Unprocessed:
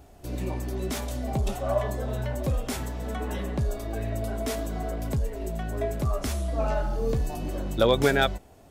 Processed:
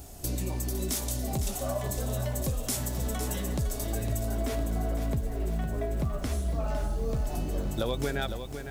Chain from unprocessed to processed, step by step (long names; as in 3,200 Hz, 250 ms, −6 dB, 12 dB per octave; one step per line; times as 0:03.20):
bass and treble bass +4 dB, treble +15 dB, from 0:04.23 treble −3 dB, from 0:06.32 treble +5 dB
downward compressor, threshold −30 dBFS, peak gain reduction 14 dB
feedback echo at a low word length 507 ms, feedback 55%, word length 9 bits, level −8.5 dB
level +2 dB